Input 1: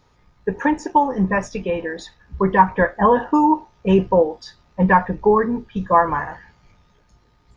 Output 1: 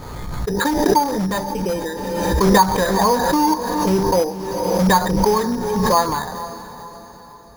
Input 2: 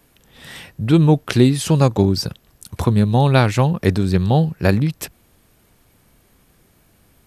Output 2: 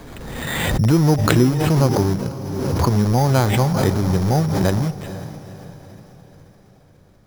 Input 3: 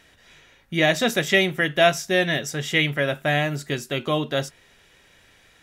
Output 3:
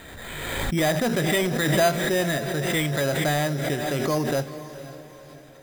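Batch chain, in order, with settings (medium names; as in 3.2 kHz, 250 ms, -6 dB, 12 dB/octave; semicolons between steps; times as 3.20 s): de-hum 197.5 Hz, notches 4; in parallel at -7.5 dB: integer overflow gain 15.5 dB; on the sum: treble shelf 3 kHz -11 dB; careless resampling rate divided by 8×, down filtered, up hold; dynamic bell 890 Hz, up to +3 dB, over -29 dBFS, Q 2.9; on a send: echo that smears into a reverb 476 ms, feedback 48%, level -13 dB; on the sum: swell ahead of each attack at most 29 dB/s; trim -3 dB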